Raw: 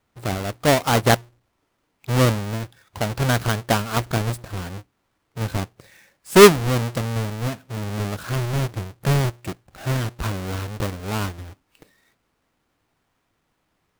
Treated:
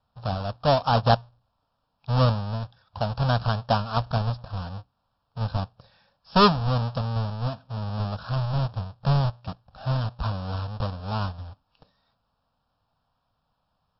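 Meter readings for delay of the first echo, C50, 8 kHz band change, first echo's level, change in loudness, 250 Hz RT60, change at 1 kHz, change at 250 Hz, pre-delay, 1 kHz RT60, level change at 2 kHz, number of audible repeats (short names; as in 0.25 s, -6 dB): none, none, under -40 dB, none, -4.5 dB, none, -1.0 dB, -5.5 dB, none, none, -10.0 dB, none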